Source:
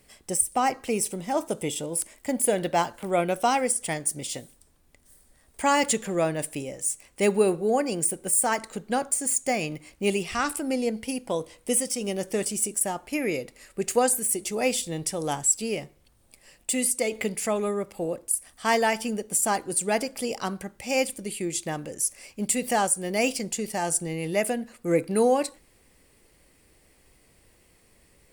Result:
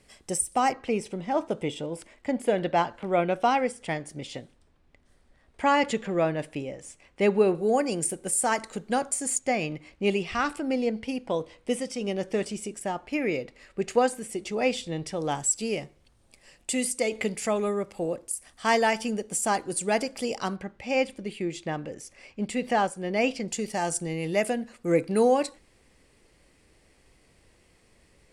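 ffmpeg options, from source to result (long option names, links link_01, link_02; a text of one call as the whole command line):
ffmpeg -i in.wav -af "asetnsamples=nb_out_samples=441:pad=0,asendcmd='0.73 lowpass f 3400;7.55 lowpass f 8600;9.39 lowpass f 4100;15.35 lowpass f 7600;20.56 lowpass f 3400;23.48 lowpass f 7400',lowpass=8300" out.wav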